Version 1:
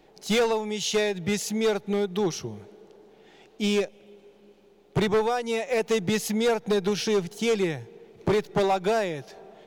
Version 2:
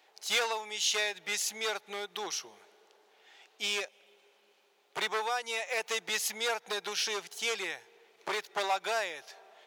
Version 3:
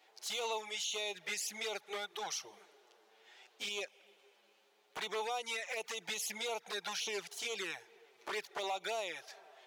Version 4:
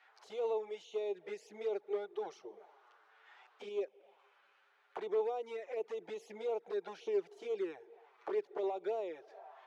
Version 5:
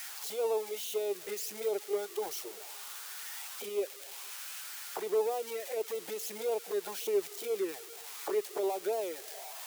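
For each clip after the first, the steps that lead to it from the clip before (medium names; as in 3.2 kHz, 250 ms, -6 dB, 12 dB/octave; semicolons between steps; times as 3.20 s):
high-pass 1 kHz 12 dB/octave
touch-sensitive flanger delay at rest 9.7 ms, full sweep at -28.5 dBFS; peak limiter -30 dBFS, peak gain reduction 11.5 dB; trim +1 dB
auto-wah 390–1600 Hz, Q 2.8, down, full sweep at -44 dBFS; trim +9.5 dB
zero-crossing glitches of -35.5 dBFS; trim +4 dB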